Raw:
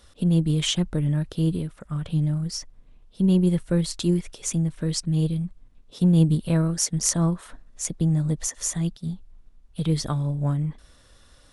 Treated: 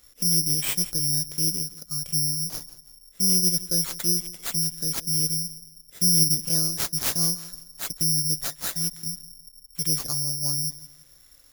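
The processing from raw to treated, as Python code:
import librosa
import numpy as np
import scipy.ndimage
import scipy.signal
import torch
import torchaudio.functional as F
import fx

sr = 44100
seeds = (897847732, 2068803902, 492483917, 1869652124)

p1 = 10.0 ** (-11.0 / 20.0) * np.tanh(x / 10.0 ** (-11.0 / 20.0))
p2 = x + (p1 * 10.0 ** (-4.0 / 20.0))
p3 = fx.echo_feedback(p2, sr, ms=170, feedback_pct=34, wet_db=-17)
p4 = (np.kron(p3[::8], np.eye(8)[0]) * 8)[:len(p3)]
y = p4 * 10.0 ** (-15.0 / 20.0)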